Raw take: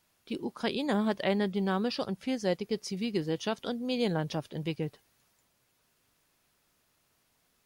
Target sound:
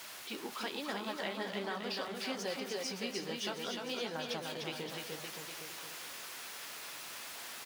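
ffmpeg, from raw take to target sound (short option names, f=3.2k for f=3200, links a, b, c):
-af "aeval=exprs='val(0)+0.5*0.0106*sgn(val(0))':c=same,highpass=f=1.2k:p=1,highshelf=f=5.6k:g=-7.5,acompressor=threshold=-38dB:ratio=6,flanger=delay=7.1:depth=9:regen=-37:speed=1.2:shape=triangular,aecho=1:1:300|570|813|1032|1229:0.631|0.398|0.251|0.158|0.1,volume=6dB"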